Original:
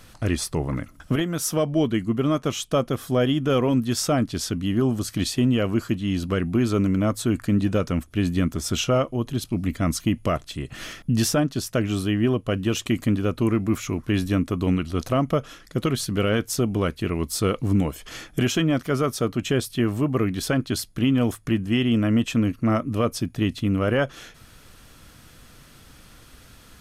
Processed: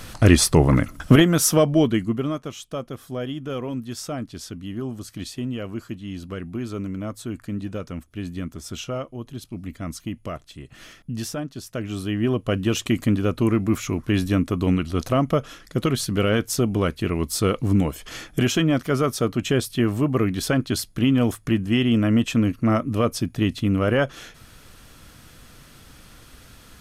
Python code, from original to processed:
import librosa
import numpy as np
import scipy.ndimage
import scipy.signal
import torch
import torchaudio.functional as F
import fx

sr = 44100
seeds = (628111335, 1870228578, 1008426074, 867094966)

y = fx.gain(x, sr, db=fx.line((1.15, 10.0), (2.06, 1.0), (2.5, -8.5), (11.6, -8.5), (12.47, 1.5)))